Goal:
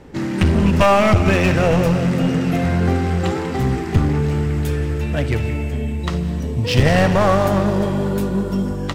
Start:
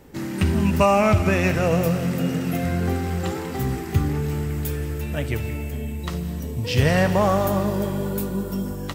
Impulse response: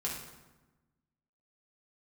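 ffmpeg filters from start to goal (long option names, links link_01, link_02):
-af "adynamicsmooth=sensitivity=4:basefreq=6100,aeval=exprs='clip(val(0),-1,0.0944)':channel_layout=same,volume=6.5dB"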